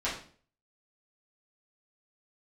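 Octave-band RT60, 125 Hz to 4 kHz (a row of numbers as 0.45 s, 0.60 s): 0.55 s, 0.55 s, 0.50 s, 0.40 s, 0.40 s, 0.40 s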